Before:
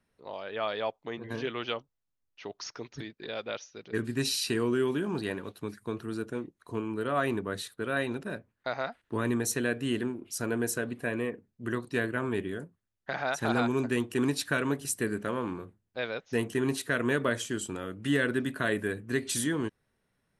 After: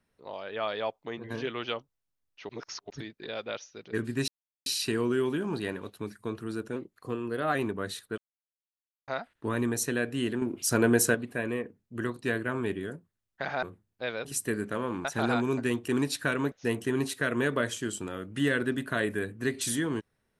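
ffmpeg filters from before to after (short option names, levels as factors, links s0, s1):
-filter_complex "[0:a]asplit=14[s0][s1][s2][s3][s4][s5][s6][s7][s8][s9][s10][s11][s12][s13];[s0]atrim=end=2.492[s14];[s1]atrim=start=2.488:end=2.902,asetpts=PTS-STARTPTS,areverse[s15];[s2]atrim=start=2.898:end=4.28,asetpts=PTS-STARTPTS,afade=t=out:st=1.378:d=0.004:c=hsin,apad=pad_dur=0.38[s16];[s3]atrim=start=4.28:end=6.384,asetpts=PTS-STARTPTS,afade=t=in:d=0.004:c=hsin[s17];[s4]atrim=start=6.38:end=7.23,asetpts=PTS-STARTPTS,asetrate=47628,aresample=44100,atrim=end_sample=34708,asetpts=PTS-STARTPTS[s18];[s5]atrim=start=7.226:end=7.86,asetpts=PTS-STARTPTS,afade=t=out:st=0.63:d=0.004:c=hsin[s19];[s6]atrim=start=7.86:end=8.76,asetpts=PTS-STARTPTS,volume=0[s20];[s7]atrim=start=8.76:end=10.102,asetpts=PTS-STARTPTS,afade=t=in:d=0.004:c=hsin[s21];[s8]atrim=start=10.098:end=10.832,asetpts=PTS-STARTPTS,volume=2.37[s22];[s9]atrim=start=10.828:end=13.312[s23];[s10]atrim=start=15.578:end=16.202[s24];[s11]atrim=start=14.778:end=15.582[s25];[s12]atrim=start=13.308:end=14.782[s26];[s13]atrim=start=16.198[s27];[s14][s15]acrossfade=d=0.004:c1=hsin:c2=hsin[s28];[s16][s17]concat=n=2:v=0:a=1[s29];[s28][s29]acrossfade=d=0.004:c1=hsin:c2=hsin[s30];[s30][s18]acrossfade=d=0.004:c1=hsin:c2=hsin[s31];[s19][s20][s21]concat=n=3:v=0:a=1[s32];[s31][s32]acrossfade=d=0.004:c1=hsin:c2=hsin[s33];[s33][s22]acrossfade=d=0.004:c1=hsin:c2=hsin[s34];[s34][s23]acrossfade=d=0.004:c1=hsin:c2=hsin[s35];[s35][s24]acrossfade=d=0.004:c1=hsin:c2=hsin[s36];[s36][s25]acrossfade=d=0.004:c1=hsin:c2=hsin[s37];[s37][s26]acrossfade=d=0.004:c1=hsin:c2=hsin[s38];[s38][s27]acrossfade=d=0.004:c1=hsin:c2=hsin"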